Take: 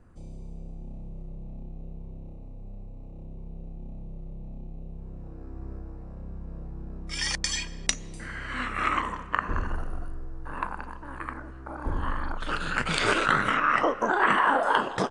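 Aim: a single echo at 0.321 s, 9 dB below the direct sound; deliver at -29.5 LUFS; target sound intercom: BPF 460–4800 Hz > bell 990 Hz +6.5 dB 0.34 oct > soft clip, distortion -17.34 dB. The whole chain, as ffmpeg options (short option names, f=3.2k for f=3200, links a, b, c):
-af "highpass=460,lowpass=4.8k,equalizer=f=990:t=o:w=0.34:g=6.5,aecho=1:1:321:0.355,asoftclip=threshold=-12.5dB,volume=-2.5dB"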